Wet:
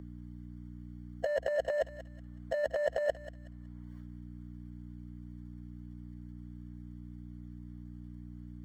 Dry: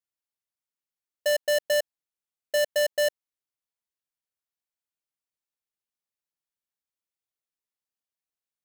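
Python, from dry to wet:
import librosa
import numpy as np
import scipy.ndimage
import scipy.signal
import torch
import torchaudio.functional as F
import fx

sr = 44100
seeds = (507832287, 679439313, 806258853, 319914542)

y = fx.spec_quant(x, sr, step_db=15)
y = fx.transient(y, sr, attack_db=7, sustain_db=-6)
y = scipy.signal.savgol_filter(y, 41, 4, mode='constant')
y = fx.transient(y, sr, attack_db=-2, sustain_db=12)
y = fx.leveller(y, sr, passes=1)
y = fx.add_hum(y, sr, base_hz=60, snr_db=35)
y = fx.low_shelf(y, sr, hz=290.0, db=-7.0)
y = fx.over_compress(y, sr, threshold_db=-30.0, ratio=-0.5)
y = fx.echo_thinned(y, sr, ms=186, feedback_pct=27, hz=1200.0, wet_db=-12)
y = fx.band_squash(y, sr, depth_pct=40)
y = y * 10.0 ** (7.5 / 20.0)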